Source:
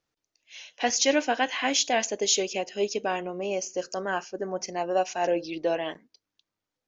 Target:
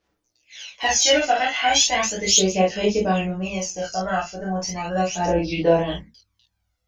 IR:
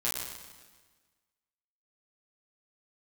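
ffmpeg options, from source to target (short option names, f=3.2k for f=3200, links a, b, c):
-filter_complex "[1:a]atrim=start_sample=2205,atrim=end_sample=3969[a];[0:a][a]afir=irnorm=-1:irlink=0,asubboost=boost=9:cutoff=110,aphaser=in_gain=1:out_gain=1:delay=1.5:decay=0.61:speed=0.36:type=sinusoidal"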